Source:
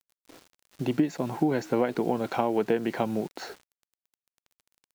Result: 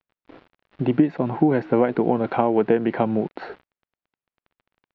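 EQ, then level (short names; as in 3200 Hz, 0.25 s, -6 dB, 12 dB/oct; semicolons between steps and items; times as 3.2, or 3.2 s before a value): LPF 4500 Hz 12 dB/oct; air absorption 390 m; +7.5 dB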